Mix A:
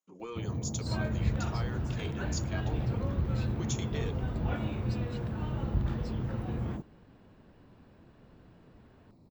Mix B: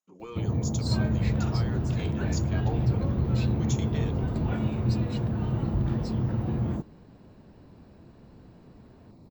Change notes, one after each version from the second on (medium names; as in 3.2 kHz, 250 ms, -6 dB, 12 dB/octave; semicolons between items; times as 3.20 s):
first sound +7.5 dB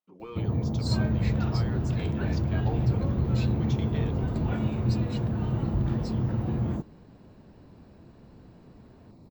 speech: remove resonant low-pass 6.9 kHz, resonance Q 16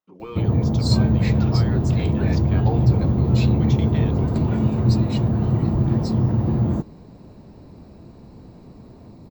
speech +6.0 dB; first sound +8.5 dB